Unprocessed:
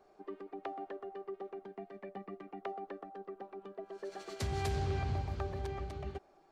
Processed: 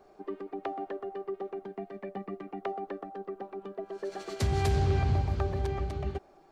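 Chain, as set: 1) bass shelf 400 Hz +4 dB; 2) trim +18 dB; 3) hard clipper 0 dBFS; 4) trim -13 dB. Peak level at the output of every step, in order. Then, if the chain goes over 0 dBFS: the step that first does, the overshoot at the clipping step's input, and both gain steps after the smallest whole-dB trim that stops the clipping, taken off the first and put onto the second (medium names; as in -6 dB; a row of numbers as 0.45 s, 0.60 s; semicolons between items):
-21.0 dBFS, -3.0 dBFS, -3.0 dBFS, -16.0 dBFS; nothing clips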